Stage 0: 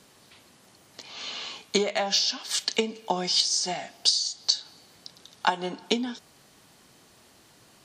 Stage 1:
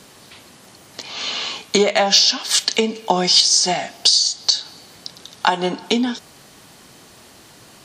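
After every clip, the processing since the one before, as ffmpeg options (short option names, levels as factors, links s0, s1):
-af "alimiter=level_in=3.98:limit=0.891:release=50:level=0:latency=1,volume=0.891"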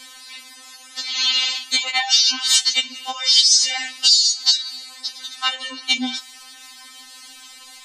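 -af "acompressor=threshold=0.1:ratio=2.5,equalizer=f=125:t=o:w=1:g=-8,equalizer=f=250:t=o:w=1:g=-5,equalizer=f=500:t=o:w=1:g=-9,equalizer=f=1000:t=o:w=1:g=4,equalizer=f=2000:t=o:w=1:g=6,equalizer=f=4000:t=o:w=1:g=8,equalizer=f=8000:t=o:w=1:g=7,afftfilt=real='re*3.46*eq(mod(b,12),0)':imag='im*3.46*eq(mod(b,12),0)':win_size=2048:overlap=0.75"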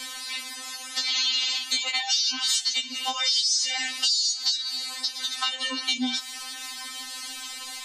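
-filter_complex "[0:a]acrossover=split=320|3000[s0][s1][s2];[s1]acompressor=threshold=0.0355:ratio=6[s3];[s0][s3][s2]amix=inputs=3:normalize=0,asplit=2[s4][s5];[s5]alimiter=limit=0.188:level=0:latency=1,volume=0.841[s6];[s4][s6]amix=inputs=2:normalize=0,acompressor=threshold=0.0562:ratio=3"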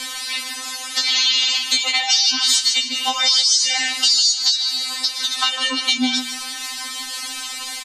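-filter_complex "[0:a]aresample=32000,aresample=44100,asplit=2[s0][s1];[s1]aecho=0:1:153|306|459:0.316|0.0696|0.0153[s2];[s0][s2]amix=inputs=2:normalize=0,volume=2.37"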